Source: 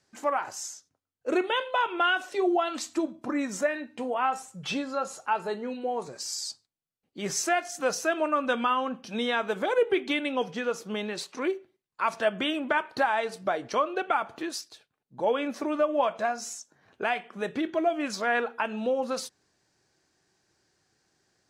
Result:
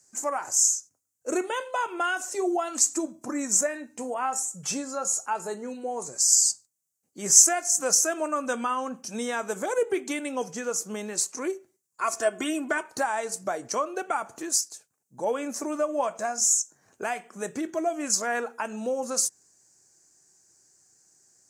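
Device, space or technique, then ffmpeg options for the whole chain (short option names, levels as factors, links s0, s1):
budget condenser microphone: -filter_complex "[0:a]asettb=1/sr,asplit=3[s0][s1][s2];[s0]atrim=end=12.014[s3];[s1]atrim=start=12.01:end=12.83,asetpts=PTS-STARTPTS,afade=t=in:d=0.004:c=qsin,afade=t=out:st=0.816:d=0.004:c=qsin,aecho=1:1:2.8:0.69,atrim=end_sample=36162[s4];[s2]atrim=start=12.826[s5];[s3][s4]acrossfade=d=0.004:c1=hsin:c2=qsin[s6];[s6][s5]acrossfade=d=0.004:c1=qsin:c2=hsin,highpass=71,highshelf=f=5000:t=q:w=3:g=13,volume=0.841"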